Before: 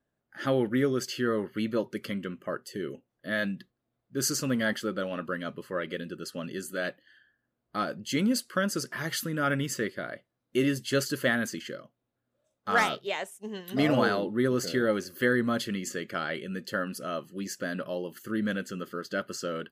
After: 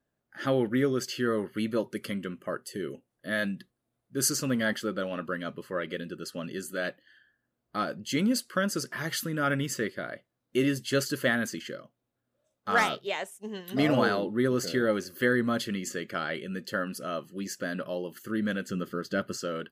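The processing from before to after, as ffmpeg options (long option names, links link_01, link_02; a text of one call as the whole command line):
ffmpeg -i in.wav -filter_complex "[0:a]asettb=1/sr,asplit=3[link_01][link_02][link_03];[link_01]atrim=end=1.204[link_04];[link_02]atrim=start=1.2:end=4.29,asetpts=PTS-STARTPTS,afade=type=in:duration=0.004:curve=qsin,afade=type=out:start_time=3.086:duration=0.004:curve=qsin,equalizer=frequency=9900:width=1.8:gain=7.5[link_05];[link_03]atrim=start=4.286[link_06];[link_04][link_05]acrossfade=duration=0.004:curve1=hsin:curve2=qsin[link_07];[link_07][link_06]acrossfade=duration=0.004:curve1=qsin:curve2=hsin,asettb=1/sr,asplit=3[link_08][link_09][link_10];[link_08]atrim=end=18.684[link_11];[link_09]atrim=start=18.68:end=19.38,asetpts=PTS-STARTPTS,afade=type=in:duration=0.004:curve=qsin,afade=type=out:start_time=0.696:duration=0.004:curve=qsin,lowshelf=frequency=240:gain=9[link_12];[link_10]atrim=start=19.376[link_13];[link_11][link_12]acrossfade=duration=0.004:curve1=hsin:curve2=qsin[link_14];[link_14][link_13]acrossfade=duration=0.004:curve1=qsin:curve2=hsin" out.wav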